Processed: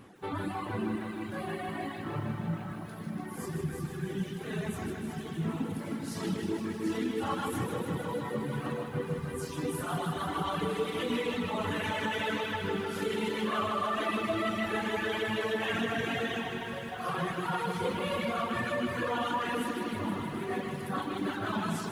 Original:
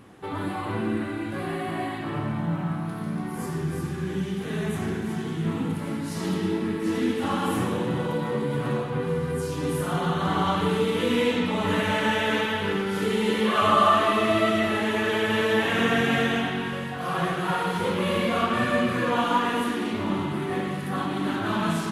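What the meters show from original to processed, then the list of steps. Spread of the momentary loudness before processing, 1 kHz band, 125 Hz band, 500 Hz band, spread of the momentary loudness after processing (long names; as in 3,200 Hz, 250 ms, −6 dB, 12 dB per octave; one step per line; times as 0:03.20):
8 LU, −8.0 dB, −7.5 dB, −8.0 dB, 6 LU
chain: reverb reduction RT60 1.8 s
brickwall limiter −20 dBFS, peak gain reduction 10 dB
reverb reduction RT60 1.9 s
feedback echo at a low word length 156 ms, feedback 80%, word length 10 bits, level −7 dB
level −2.5 dB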